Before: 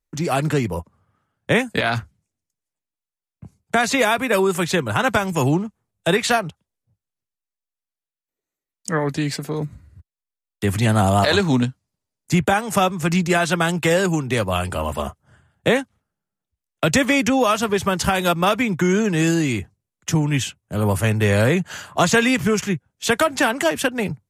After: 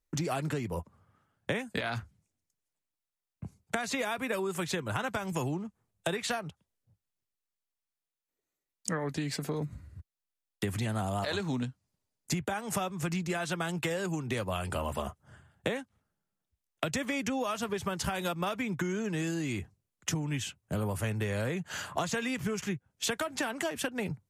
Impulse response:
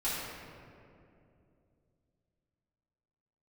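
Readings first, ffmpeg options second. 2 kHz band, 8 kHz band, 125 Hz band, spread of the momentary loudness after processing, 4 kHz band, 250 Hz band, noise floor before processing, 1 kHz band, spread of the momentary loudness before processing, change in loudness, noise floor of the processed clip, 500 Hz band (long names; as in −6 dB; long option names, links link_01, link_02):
−14.0 dB, −11.0 dB, −13.0 dB, 6 LU, −12.5 dB, −13.5 dB, below −85 dBFS, −14.5 dB, 9 LU, −14.0 dB, below −85 dBFS, −14.5 dB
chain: -af "acompressor=threshold=-28dB:ratio=10,volume=-1.5dB"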